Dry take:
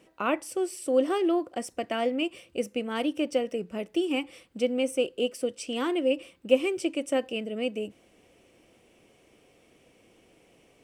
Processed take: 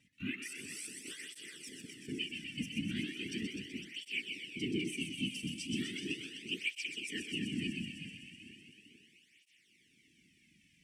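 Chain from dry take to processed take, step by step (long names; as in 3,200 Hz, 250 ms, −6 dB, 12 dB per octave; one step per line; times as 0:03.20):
feedback delay that plays each chunk backwards 224 ms, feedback 66%, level −12 dB
Chebyshev band-stop filter 240–1,900 Hz, order 4
high-shelf EQ 9,900 Hz −9 dB
0:00.71–0:02.09: compressor whose output falls as the input rises −46 dBFS, ratio −1
random phases in short frames
on a send: feedback echo with a high-pass in the loop 126 ms, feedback 78%, high-pass 680 Hz, level −5 dB
on the sum: through-zero flanger with one copy inverted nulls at 0.37 Hz, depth 2.8 ms
level −1 dB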